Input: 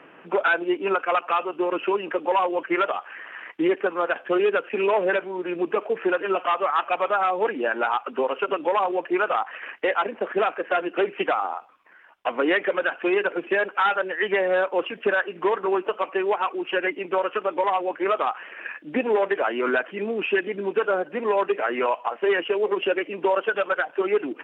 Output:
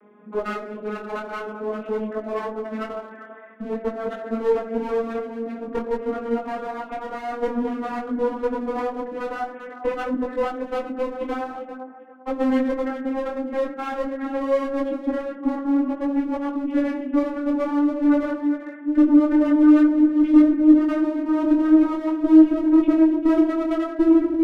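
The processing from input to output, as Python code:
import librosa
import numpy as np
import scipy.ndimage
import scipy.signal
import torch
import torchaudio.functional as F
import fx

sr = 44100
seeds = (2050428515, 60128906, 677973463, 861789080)

p1 = fx.vocoder_glide(x, sr, note=56, semitones=8)
p2 = scipy.signal.sosfilt(scipy.signal.butter(2, 1800.0, 'lowpass', fs=sr, output='sos'), p1)
p3 = fx.peak_eq(p2, sr, hz=640.0, db=2.0, octaves=0.25)
p4 = p3 + fx.echo_feedback(p3, sr, ms=395, feedback_pct=22, wet_db=-12.5, dry=0)
p5 = fx.room_shoebox(p4, sr, seeds[0], volume_m3=2900.0, walls='furnished', distance_m=2.0)
p6 = fx.clip_asym(p5, sr, top_db=-30.0, bottom_db=-13.0)
p7 = fx.peak_eq(p6, sr, hz=300.0, db=12.5, octaves=0.86)
y = fx.detune_double(p7, sr, cents=17)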